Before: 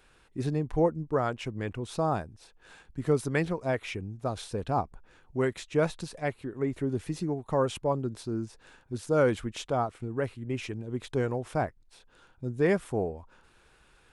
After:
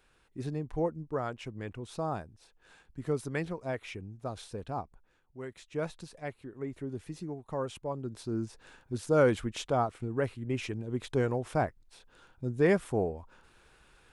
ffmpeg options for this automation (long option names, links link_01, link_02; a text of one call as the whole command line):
ffmpeg -i in.wav -af "volume=10dB,afade=type=out:start_time=4.46:duration=0.91:silence=0.316228,afade=type=in:start_time=5.37:duration=0.46:silence=0.398107,afade=type=in:start_time=7.95:duration=0.48:silence=0.398107" out.wav